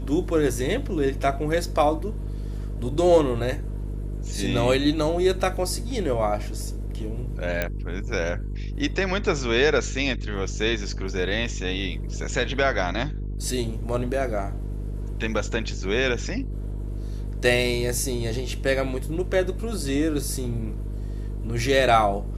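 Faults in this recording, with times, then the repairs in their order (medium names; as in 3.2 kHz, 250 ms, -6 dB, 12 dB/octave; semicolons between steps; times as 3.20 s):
buzz 50 Hz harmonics 9 -30 dBFS
7.62 s: pop -10 dBFS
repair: de-click; de-hum 50 Hz, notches 9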